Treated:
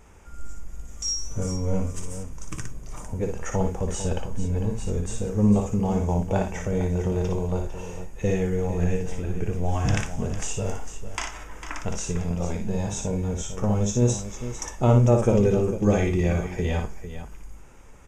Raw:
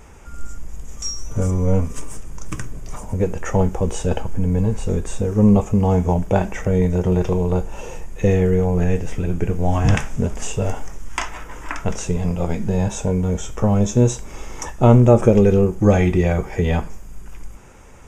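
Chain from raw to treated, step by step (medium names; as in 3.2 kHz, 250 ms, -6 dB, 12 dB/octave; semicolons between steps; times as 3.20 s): dynamic bell 6 kHz, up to +6 dB, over -44 dBFS, Q 0.75; on a send: multi-tap echo 58/451 ms -5/-11 dB; on the sum: trim -8 dB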